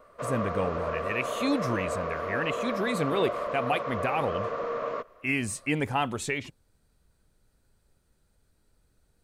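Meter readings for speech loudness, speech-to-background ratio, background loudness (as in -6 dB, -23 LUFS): -30.5 LUFS, 2.0 dB, -32.5 LUFS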